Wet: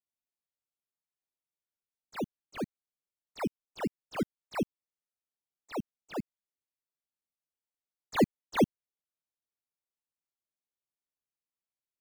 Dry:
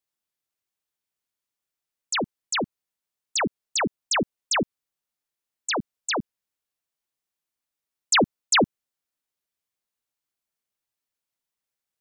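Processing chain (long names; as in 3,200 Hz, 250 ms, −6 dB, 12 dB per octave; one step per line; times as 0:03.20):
volume swells 144 ms
treble cut that deepens with the level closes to 3,000 Hz, closed at −27 dBFS
in parallel at −6 dB: sample-and-hold swept by an LFO 20×, swing 60% 1.7 Hz
on the sum: expander for the loud parts 1.5 to 1, over −43 dBFS
level −2.5 dB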